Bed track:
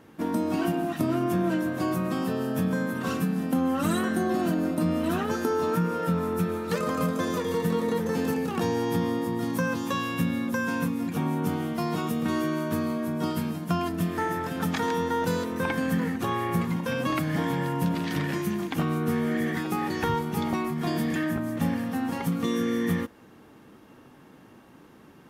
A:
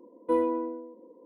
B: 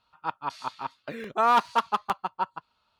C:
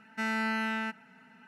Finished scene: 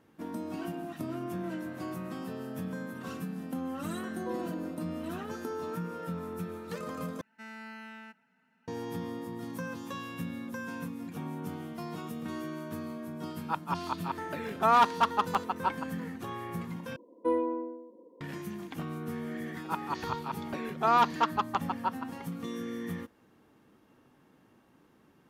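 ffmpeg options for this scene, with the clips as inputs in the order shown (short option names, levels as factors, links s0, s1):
-filter_complex "[3:a]asplit=2[s0][s1];[1:a]asplit=2[s2][s3];[2:a]asplit=2[s4][s5];[0:a]volume=0.282[s6];[s0]acompressor=threshold=0.00447:ratio=6:attack=3.2:release=140:knee=1:detection=peak[s7];[s1]acrusher=bits=9:mode=log:mix=0:aa=0.000001[s8];[s5]aresample=16000,aresample=44100[s9];[s6]asplit=3[s10][s11][s12];[s10]atrim=end=7.214[s13];[s8]atrim=end=1.47,asetpts=PTS-STARTPTS,volume=0.188[s14];[s11]atrim=start=8.676:end=16.964[s15];[s3]atrim=end=1.25,asetpts=PTS-STARTPTS,volume=0.708[s16];[s12]atrim=start=18.206[s17];[s7]atrim=end=1.47,asetpts=PTS-STARTPTS,volume=0.398,afade=t=in:d=0.004:c=hsin,afade=t=out:st=1.466:d=0.004:c=hsin,adelay=1260[s18];[s2]atrim=end=1.25,asetpts=PTS-STARTPTS,volume=0.2,afade=t=in:d=0.004:c=hsin,afade=t=out:st=1.246:d=0.004:c=hsin,adelay=175077S[s19];[s4]atrim=end=2.99,asetpts=PTS-STARTPTS,volume=0.841,afade=t=in:d=0.004:c=hsin,afade=t=out:st=2.986:d=0.004:c=hsin,adelay=13250[s20];[s9]atrim=end=2.99,asetpts=PTS-STARTPTS,volume=0.708,afade=t=in:d=0.004:c=hsin,afade=t=out:st=2.986:d=0.004:c=hsin,adelay=19450[s21];[s13][s14]acrossfade=d=0.004:c1=hsin:c2=hsin[s22];[s22][s15]acrossfade=d=0.004:c1=hsin:c2=hsin[s23];[s23][s16]acrossfade=d=0.004:c1=hsin:c2=hsin[s24];[s24][s17]acrossfade=d=0.004:c1=hsin:c2=hsin[s25];[s25][s18][s19][s20][s21]amix=inputs=5:normalize=0"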